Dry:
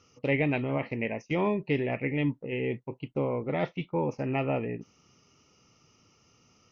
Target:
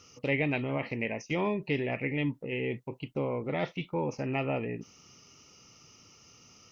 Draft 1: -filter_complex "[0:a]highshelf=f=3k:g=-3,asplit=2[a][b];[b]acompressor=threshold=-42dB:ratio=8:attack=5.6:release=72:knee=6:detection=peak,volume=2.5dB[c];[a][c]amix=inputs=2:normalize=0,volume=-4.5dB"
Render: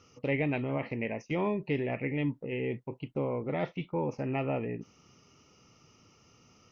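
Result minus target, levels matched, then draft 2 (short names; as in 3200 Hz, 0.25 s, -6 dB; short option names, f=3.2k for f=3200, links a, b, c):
8000 Hz band -8.5 dB
-filter_complex "[0:a]highshelf=f=3k:g=8.5,asplit=2[a][b];[b]acompressor=threshold=-42dB:ratio=8:attack=5.6:release=72:knee=6:detection=peak,volume=2.5dB[c];[a][c]amix=inputs=2:normalize=0,volume=-4.5dB"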